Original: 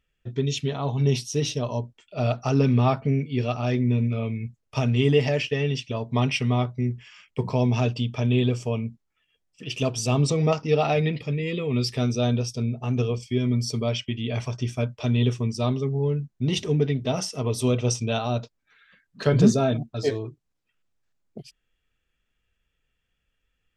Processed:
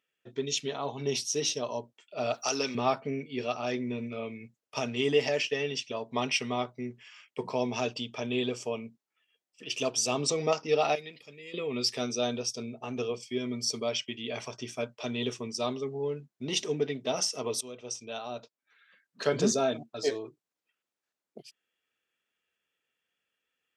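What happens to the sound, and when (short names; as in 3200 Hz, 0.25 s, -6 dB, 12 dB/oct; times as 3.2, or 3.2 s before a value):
2.34–2.75 RIAA curve recording
10.95–11.54 pre-emphasis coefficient 0.8
17.61–19.31 fade in, from -17 dB
whole clip: HPF 330 Hz 12 dB/oct; dynamic EQ 6200 Hz, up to +6 dB, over -46 dBFS, Q 1.2; gain -3 dB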